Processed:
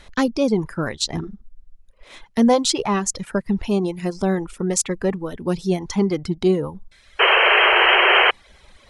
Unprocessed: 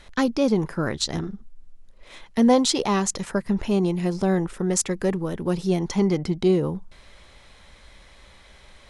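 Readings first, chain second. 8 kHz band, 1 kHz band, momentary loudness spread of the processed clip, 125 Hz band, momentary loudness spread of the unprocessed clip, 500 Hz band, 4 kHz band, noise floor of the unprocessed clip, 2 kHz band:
+2.5 dB, +9.0 dB, 14 LU, 0.0 dB, 8 LU, +3.0 dB, +11.0 dB, −51 dBFS, +17.5 dB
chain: reverb reduction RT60 1.2 s
sound drawn into the spectrogram noise, 0:07.19–0:08.31, 350–3,200 Hz −17 dBFS
level +2.5 dB

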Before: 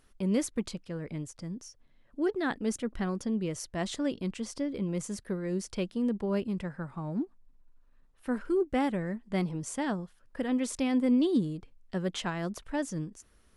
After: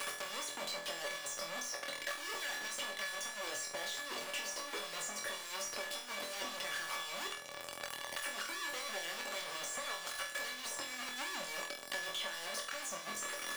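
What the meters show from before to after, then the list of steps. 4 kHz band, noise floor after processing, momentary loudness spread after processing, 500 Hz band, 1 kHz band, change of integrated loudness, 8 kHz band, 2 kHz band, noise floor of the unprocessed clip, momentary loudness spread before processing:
+6.0 dB, −47 dBFS, 2 LU, −11.5 dB, −3.0 dB, −7.5 dB, +3.0 dB, +3.5 dB, −63 dBFS, 11 LU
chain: sign of each sample alone
meter weighting curve A
de-essing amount 75%
high-pass filter 60 Hz
low-shelf EQ 230 Hz −10 dB
harmonic and percussive parts rebalanced harmonic −16 dB
dead-zone distortion −56.5 dBFS
tuned comb filter 570 Hz, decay 0.22 s, harmonics all, mix 90%
on a send: flutter between parallel walls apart 4.1 metres, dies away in 0.4 s
on the sum: multiband upward and downward compressor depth 100%
level +14.5 dB

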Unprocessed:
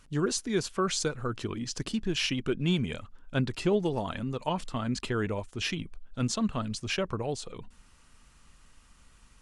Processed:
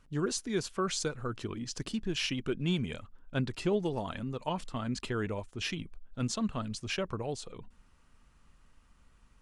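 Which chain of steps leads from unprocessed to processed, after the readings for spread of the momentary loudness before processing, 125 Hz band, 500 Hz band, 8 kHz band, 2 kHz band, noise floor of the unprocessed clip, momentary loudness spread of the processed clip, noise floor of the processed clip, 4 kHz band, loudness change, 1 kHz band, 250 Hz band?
7 LU, −3.5 dB, −3.5 dB, −3.5 dB, −3.5 dB, −59 dBFS, 7 LU, −64 dBFS, −3.5 dB, −3.5 dB, −3.5 dB, −3.5 dB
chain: one half of a high-frequency compander decoder only
level −3.5 dB

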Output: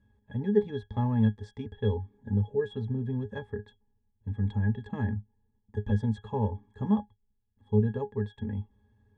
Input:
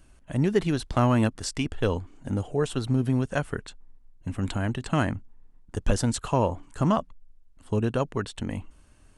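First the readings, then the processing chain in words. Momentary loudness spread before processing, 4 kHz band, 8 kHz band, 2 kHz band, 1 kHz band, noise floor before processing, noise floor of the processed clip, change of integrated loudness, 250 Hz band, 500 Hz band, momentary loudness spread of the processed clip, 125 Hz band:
10 LU, below −10 dB, below −30 dB, −10.0 dB, −10.0 dB, −56 dBFS, −74 dBFS, −3.5 dB, −3.5 dB, −4.0 dB, 12 LU, −2.0 dB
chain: resonances in every octave G#, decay 0.12 s
level +4 dB

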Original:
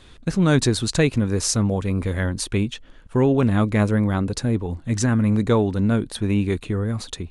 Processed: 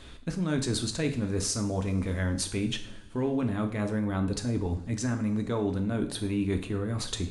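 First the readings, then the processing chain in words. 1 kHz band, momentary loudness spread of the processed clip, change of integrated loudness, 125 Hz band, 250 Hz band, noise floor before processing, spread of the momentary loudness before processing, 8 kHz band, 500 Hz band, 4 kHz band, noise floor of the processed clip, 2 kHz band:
−9.5 dB, 3 LU, −8.5 dB, −9.5 dB, −8.0 dB, −47 dBFS, 7 LU, −6.5 dB, −9.0 dB, −5.5 dB, −45 dBFS, −9.0 dB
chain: reversed playback
downward compressor 6 to 1, threshold −27 dBFS, peak gain reduction 14 dB
reversed playback
coupled-rooms reverb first 0.51 s, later 3 s, from −22 dB, DRR 5 dB

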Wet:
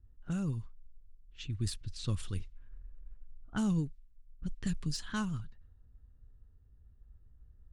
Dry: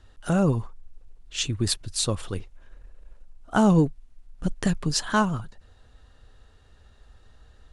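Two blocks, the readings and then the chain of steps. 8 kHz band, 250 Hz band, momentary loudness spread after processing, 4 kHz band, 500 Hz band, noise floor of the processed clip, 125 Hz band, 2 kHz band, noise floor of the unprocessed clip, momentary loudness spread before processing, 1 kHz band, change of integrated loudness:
−16.0 dB, −11.5 dB, 22 LU, −14.5 dB, −21.0 dB, −62 dBFS, −9.0 dB, −14.0 dB, −56 dBFS, 13 LU, −19.0 dB, −12.0 dB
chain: de-essing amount 55%
guitar amp tone stack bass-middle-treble 6-0-2
speech leveller within 4 dB 0.5 s
low-pass that shuts in the quiet parts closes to 570 Hz, open at −37.5 dBFS
level +7 dB

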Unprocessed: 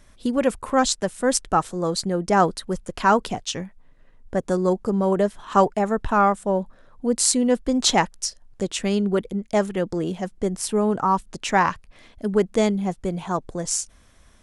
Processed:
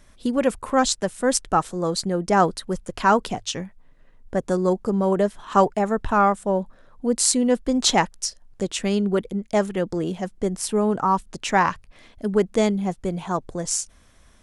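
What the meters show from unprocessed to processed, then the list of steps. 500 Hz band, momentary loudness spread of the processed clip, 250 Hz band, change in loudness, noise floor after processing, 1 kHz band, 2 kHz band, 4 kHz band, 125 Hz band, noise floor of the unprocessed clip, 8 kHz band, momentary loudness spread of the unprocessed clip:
0.0 dB, 10 LU, 0.0 dB, 0.0 dB, −54 dBFS, 0.0 dB, 0.0 dB, 0.0 dB, 0.0 dB, −54 dBFS, 0.0 dB, 10 LU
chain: mains-hum notches 50/100 Hz

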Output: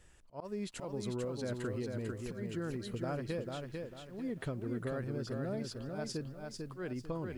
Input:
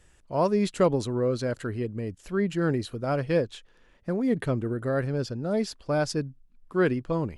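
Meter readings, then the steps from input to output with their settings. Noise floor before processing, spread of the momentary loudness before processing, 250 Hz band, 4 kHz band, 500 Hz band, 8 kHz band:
−59 dBFS, 8 LU, −11.5 dB, −8.5 dB, −13.0 dB, −7.5 dB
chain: volume swells 449 ms
downward compressor 10 to 1, threshold −32 dBFS, peak gain reduction 14 dB
feedback echo at a low word length 446 ms, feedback 35%, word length 11 bits, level −4 dB
level −3 dB

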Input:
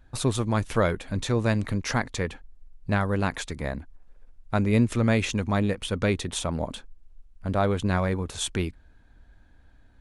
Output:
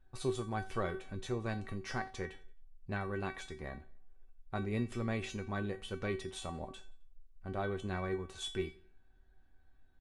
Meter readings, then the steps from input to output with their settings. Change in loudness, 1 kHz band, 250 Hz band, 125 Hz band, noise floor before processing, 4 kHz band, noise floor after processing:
−13.0 dB, −11.0 dB, −14.0 dB, −14.5 dB, −56 dBFS, −12.0 dB, −63 dBFS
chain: high-shelf EQ 4,400 Hz −8 dB
tuned comb filter 380 Hz, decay 0.28 s, harmonics all, mix 90%
on a send: repeating echo 88 ms, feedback 45%, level −22 dB
on the sum: level +3 dB

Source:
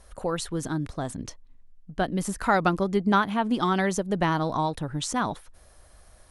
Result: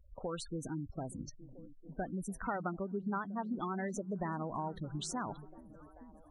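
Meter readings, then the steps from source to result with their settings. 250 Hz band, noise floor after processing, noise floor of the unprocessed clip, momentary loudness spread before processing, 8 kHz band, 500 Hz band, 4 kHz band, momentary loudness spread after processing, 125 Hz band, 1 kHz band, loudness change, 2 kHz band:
−12.0 dB, −58 dBFS, −54 dBFS, 11 LU, −11.5 dB, −13.0 dB, −14.5 dB, 17 LU, −11.5 dB, −14.0 dB, −13.5 dB, −16.0 dB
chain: gate on every frequency bin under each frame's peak −15 dB strong
downward compressor 2.5 to 1, threshold −29 dBFS, peak gain reduction 8.5 dB
echo through a band-pass that steps 436 ms, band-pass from 160 Hz, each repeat 0.7 octaves, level −11 dB
level −7.5 dB

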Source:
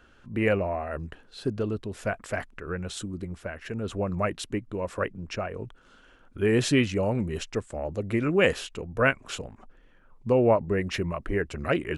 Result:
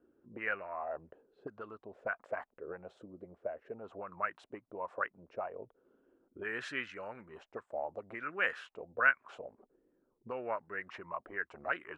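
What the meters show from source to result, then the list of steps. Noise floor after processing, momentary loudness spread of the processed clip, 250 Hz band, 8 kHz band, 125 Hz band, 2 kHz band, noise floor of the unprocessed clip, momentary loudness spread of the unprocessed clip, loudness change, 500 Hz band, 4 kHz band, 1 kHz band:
−79 dBFS, 17 LU, −22.5 dB, below −25 dB, −28.5 dB, −3.5 dB, −57 dBFS, 13 LU, −10.5 dB, −15.0 dB, −16.5 dB, −5.5 dB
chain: envelope filter 330–1,500 Hz, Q 3.2, up, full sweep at −23 dBFS
one half of a high-frequency compander decoder only

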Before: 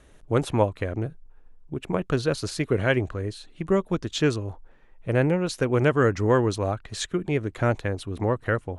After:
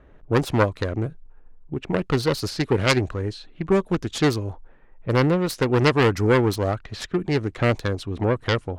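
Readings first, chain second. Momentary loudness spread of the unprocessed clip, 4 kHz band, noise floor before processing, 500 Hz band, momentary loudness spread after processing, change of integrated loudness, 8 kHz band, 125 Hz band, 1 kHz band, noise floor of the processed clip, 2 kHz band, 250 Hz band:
11 LU, +5.5 dB, −53 dBFS, +2.0 dB, 11 LU, +2.5 dB, +1.0 dB, +2.5 dB, +3.0 dB, −50 dBFS, +3.0 dB, +3.0 dB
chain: phase distortion by the signal itself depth 0.32 ms
low-pass that shuts in the quiet parts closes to 1,600 Hz, open at −22.5 dBFS
dynamic equaliser 4,900 Hz, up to +5 dB, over −50 dBFS, Q 2.4
level +3 dB

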